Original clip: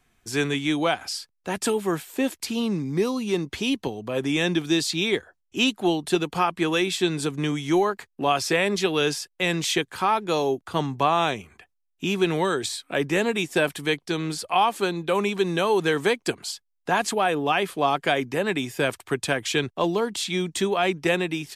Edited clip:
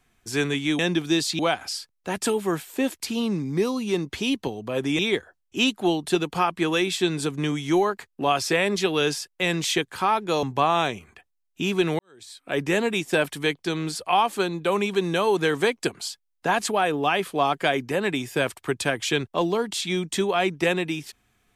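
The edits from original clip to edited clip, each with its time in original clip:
4.39–4.99 move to 0.79
10.43–10.86 cut
12.42–13.03 fade in quadratic

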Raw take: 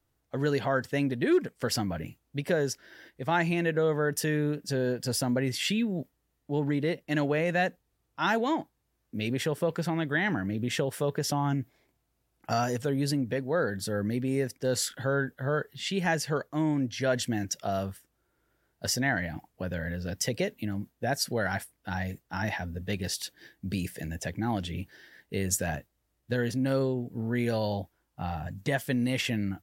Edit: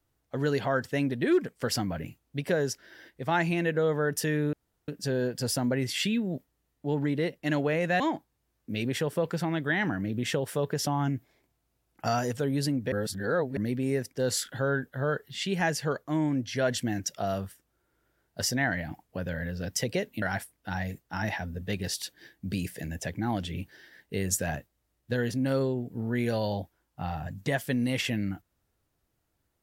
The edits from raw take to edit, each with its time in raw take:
4.53 insert room tone 0.35 s
7.65–8.45 cut
13.37–14.02 reverse
20.67–21.42 cut

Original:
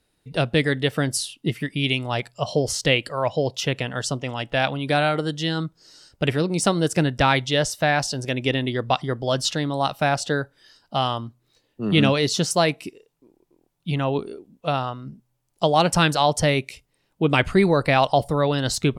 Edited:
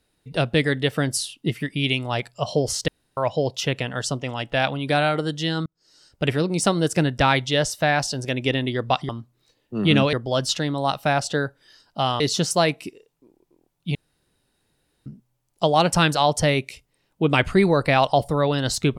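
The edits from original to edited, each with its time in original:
2.88–3.17 room tone
5.66–6.29 fade in
11.16–12.2 move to 9.09
13.95–15.06 room tone

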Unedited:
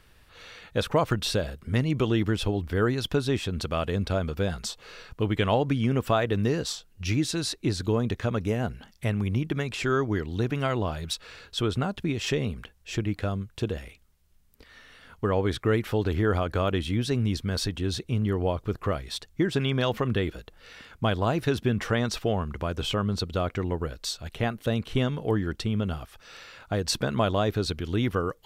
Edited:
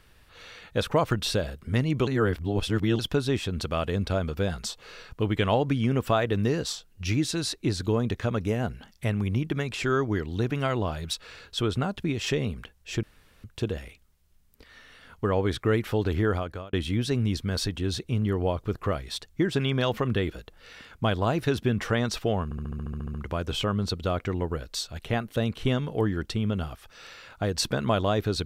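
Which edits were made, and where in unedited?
2.07–2.99 reverse
13.03–13.44 room tone
16.24–16.73 fade out
22.44 stutter 0.07 s, 11 plays

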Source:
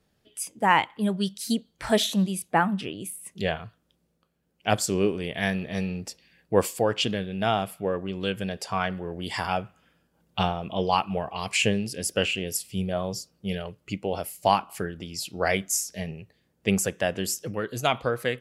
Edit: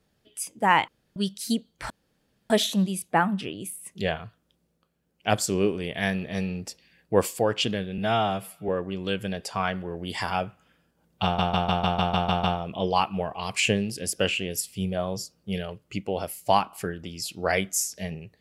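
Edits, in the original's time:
0.88–1.16 room tone
1.9 insert room tone 0.60 s
7.38–7.85 stretch 1.5×
10.4 stutter 0.15 s, 9 plays

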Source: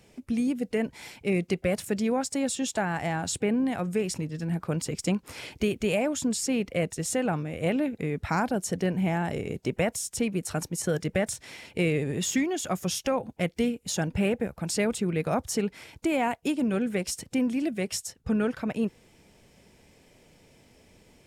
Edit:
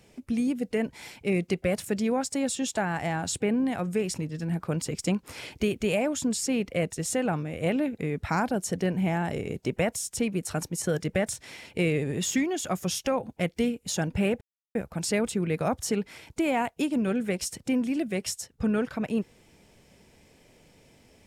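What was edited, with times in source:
14.41 insert silence 0.34 s

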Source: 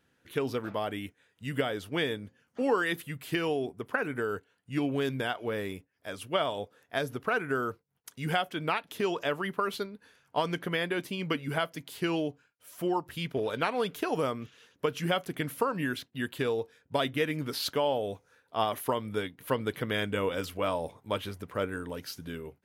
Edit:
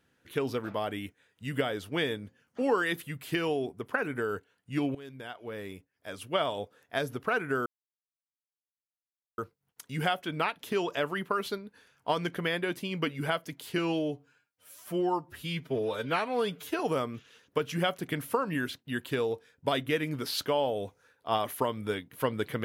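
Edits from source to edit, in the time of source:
4.95–6.41 fade in linear, from -19 dB
7.66 insert silence 1.72 s
12.06–14.07 stretch 1.5×

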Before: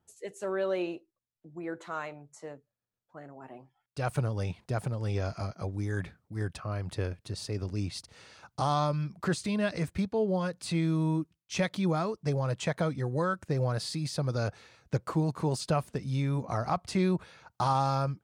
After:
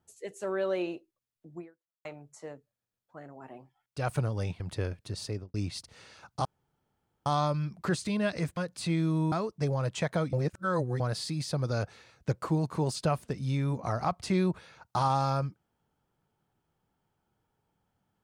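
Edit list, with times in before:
1.6–2.05 fade out exponential
4.6–6.8 cut
7.48–7.74 studio fade out
8.65 insert room tone 0.81 s
9.96–10.42 cut
11.17–11.97 cut
12.98–13.65 reverse

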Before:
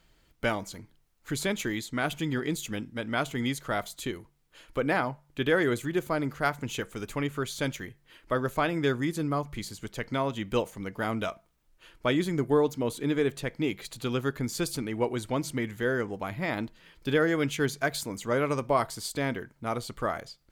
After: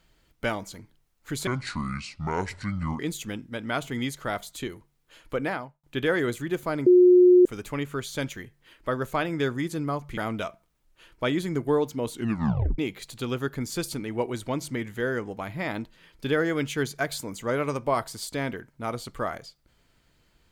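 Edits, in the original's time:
1.47–2.43 speed 63%
4.8–5.27 fade out
6.3–6.89 bleep 360 Hz -11.5 dBFS
9.61–11 cut
12.95 tape stop 0.66 s

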